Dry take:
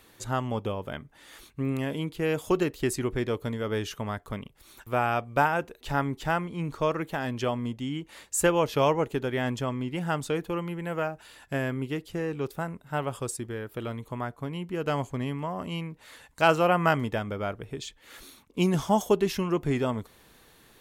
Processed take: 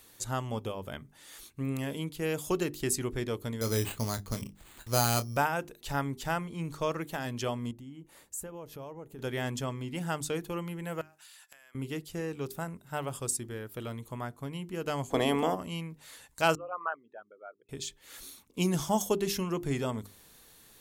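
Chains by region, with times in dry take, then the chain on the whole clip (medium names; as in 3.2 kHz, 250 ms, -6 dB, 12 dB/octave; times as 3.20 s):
3.61–5.37 s: bass shelf 330 Hz +7 dB + doubling 26 ms -10 dB + careless resampling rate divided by 8×, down none, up hold
7.71–9.19 s: peaking EQ 4.5 kHz -12 dB 2.9 oct + compression 2.5:1, threshold -42 dBFS
11.01–11.75 s: high-pass 1.2 kHz + compression 10:1, threshold -49 dBFS
15.09–15.54 s: spectral peaks clipped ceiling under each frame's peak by 19 dB + small resonant body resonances 280/450/670/3400 Hz, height 14 dB, ringing for 25 ms
16.55–17.69 s: resonances exaggerated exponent 3 + high-pass 1.2 kHz
whole clip: tone controls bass +2 dB, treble +10 dB; hum notches 50/100/150/200/250/300/350/400 Hz; trim -5 dB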